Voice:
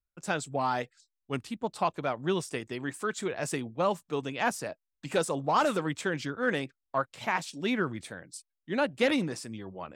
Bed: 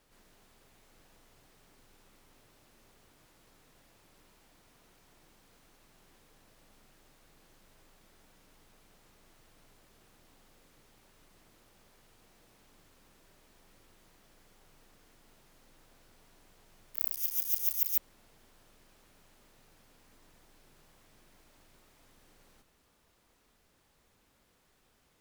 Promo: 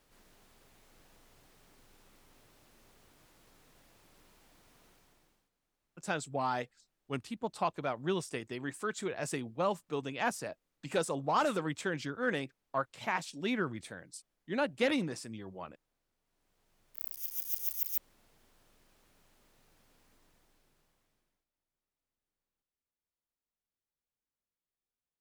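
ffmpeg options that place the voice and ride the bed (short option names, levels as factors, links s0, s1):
-filter_complex "[0:a]adelay=5800,volume=0.631[s0];[1:a]volume=7.08,afade=t=out:st=4.85:d=0.65:silence=0.0841395,afade=t=in:st=16.24:d=1.29:silence=0.141254,afade=t=out:st=20:d=1.46:silence=0.0473151[s1];[s0][s1]amix=inputs=2:normalize=0"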